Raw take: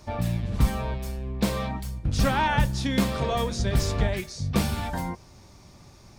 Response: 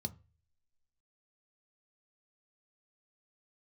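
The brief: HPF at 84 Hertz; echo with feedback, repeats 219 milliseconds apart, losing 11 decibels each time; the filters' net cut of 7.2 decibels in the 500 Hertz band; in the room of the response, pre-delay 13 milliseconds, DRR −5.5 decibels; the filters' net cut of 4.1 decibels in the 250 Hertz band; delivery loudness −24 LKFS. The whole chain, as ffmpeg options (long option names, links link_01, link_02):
-filter_complex "[0:a]highpass=84,equalizer=frequency=250:width_type=o:gain=-4,equalizer=frequency=500:width_type=o:gain=-8,aecho=1:1:219|438|657:0.282|0.0789|0.0221,asplit=2[link_01][link_02];[1:a]atrim=start_sample=2205,adelay=13[link_03];[link_02][link_03]afir=irnorm=-1:irlink=0,volume=7.5dB[link_04];[link_01][link_04]amix=inputs=2:normalize=0,volume=-8.5dB"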